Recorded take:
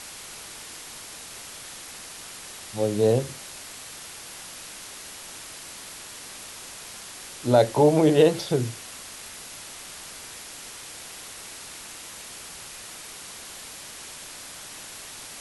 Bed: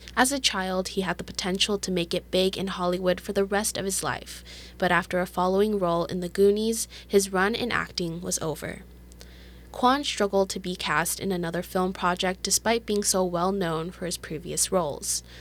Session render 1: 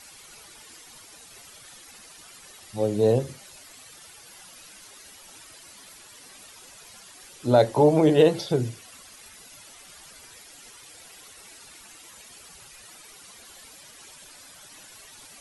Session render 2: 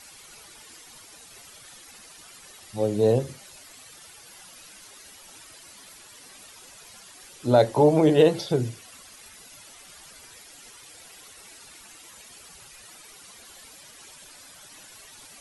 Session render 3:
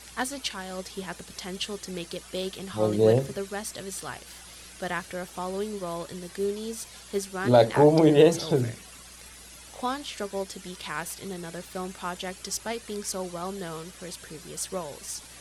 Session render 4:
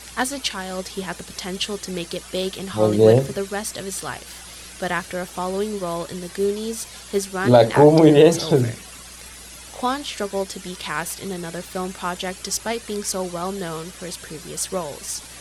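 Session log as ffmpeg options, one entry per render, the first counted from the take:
-af "afftdn=nr=12:nf=-41"
-af anull
-filter_complex "[1:a]volume=0.355[s0];[0:a][s0]amix=inputs=2:normalize=0"
-af "volume=2.24,alimiter=limit=0.794:level=0:latency=1"

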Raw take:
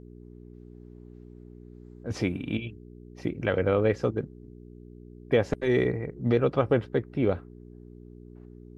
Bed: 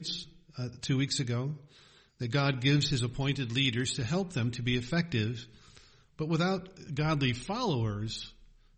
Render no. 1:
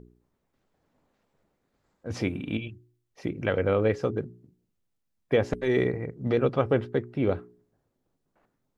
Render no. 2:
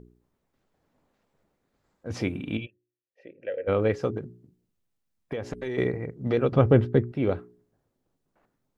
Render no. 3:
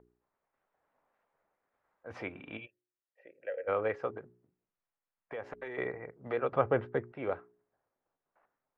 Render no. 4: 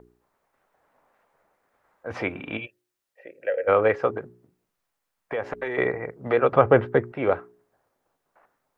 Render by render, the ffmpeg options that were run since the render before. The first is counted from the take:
-af "bandreject=f=60:t=h:w=4,bandreject=f=120:t=h:w=4,bandreject=f=180:t=h:w=4,bandreject=f=240:t=h:w=4,bandreject=f=300:t=h:w=4,bandreject=f=360:t=h:w=4,bandreject=f=420:t=h:w=4"
-filter_complex "[0:a]asplit=3[s0][s1][s2];[s0]afade=t=out:st=2.65:d=0.02[s3];[s1]asplit=3[s4][s5][s6];[s4]bandpass=f=530:t=q:w=8,volume=1[s7];[s5]bandpass=f=1840:t=q:w=8,volume=0.501[s8];[s6]bandpass=f=2480:t=q:w=8,volume=0.355[s9];[s7][s8][s9]amix=inputs=3:normalize=0,afade=t=in:st=2.65:d=0.02,afade=t=out:st=3.67:d=0.02[s10];[s2]afade=t=in:st=3.67:d=0.02[s11];[s3][s10][s11]amix=inputs=3:normalize=0,asettb=1/sr,asplit=3[s12][s13][s14];[s12]atrim=end=4.174[s15];[s13]atrim=start=4.17:end=5.78,asetpts=PTS-STARTPTS,afade=t=in:d=0.004:c=qsin,afade=t=out:st=1.606:d=0.004:c=qsin,acompressor=threshold=0.0398:ratio=6:attack=3.2:release=140:knee=1:detection=peak[s16];[s14]atrim=start=5.776[s17];[s15][s16]acrossfade=d=0.004:c1=hsin:c2=qsin[s18];[s18][s17]acrossfade=d=0.004:c1=qsin:c2=hsin,asettb=1/sr,asplit=3[s19][s20][s21];[s19]atrim=end=6.524[s22];[s20]atrim=start=6.52:end=7.12,asetpts=PTS-STARTPTS,afade=t=in:d=0.004:c=qsin,afade=t=out:st=0.596:d=0.004:c=qsin,lowshelf=f=300:g=12[s23];[s21]atrim=start=7.116[s24];[s22][s23]acrossfade=d=0.004:c1=hsin:c2=qsin[s25];[s25][s24]acrossfade=d=0.004:c1=qsin:c2=hsin"
-filter_complex "[0:a]acrossover=split=560 2300:gain=0.112 1 0.0631[s0][s1][s2];[s0][s1][s2]amix=inputs=3:normalize=0"
-af "volume=3.98,alimiter=limit=0.708:level=0:latency=1"

